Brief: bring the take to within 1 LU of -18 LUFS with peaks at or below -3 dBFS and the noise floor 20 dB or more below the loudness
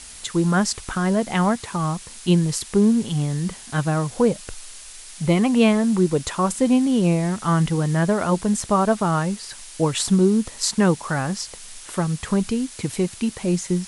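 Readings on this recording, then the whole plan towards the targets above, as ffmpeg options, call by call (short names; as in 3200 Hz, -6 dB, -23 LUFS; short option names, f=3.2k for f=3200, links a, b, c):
noise floor -41 dBFS; noise floor target -42 dBFS; loudness -21.5 LUFS; peak -5.5 dBFS; loudness target -18.0 LUFS
-> -af "afftdn=nr=6:nf=-41"
-af "volume=3.5dB,alimiter=limit=-3dB:level=0:latency=1"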